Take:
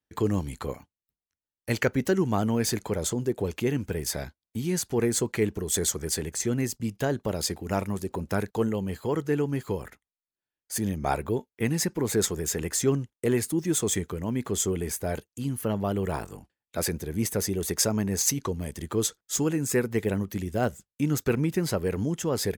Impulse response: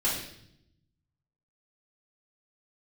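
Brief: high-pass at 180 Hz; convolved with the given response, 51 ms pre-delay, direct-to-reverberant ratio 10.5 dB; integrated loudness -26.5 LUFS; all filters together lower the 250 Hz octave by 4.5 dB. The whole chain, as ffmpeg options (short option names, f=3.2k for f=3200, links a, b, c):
-filter_complex "[0:a]highpass=180,equalizer=f=250:t=o:g=-4.5,asplit=2[a][b];[1:a]atrim=start_sample=2205,adelay=51[c];[b][c]afir=irnorm=-1:irlink=0,volume=-20dB[d];[a][d]amix=inputs=2:normalize=0,volume=3.5dB"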